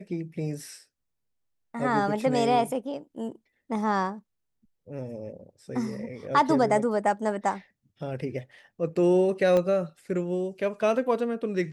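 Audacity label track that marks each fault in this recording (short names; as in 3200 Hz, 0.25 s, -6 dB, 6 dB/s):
9.570000	9.570000	pop -15 dBFS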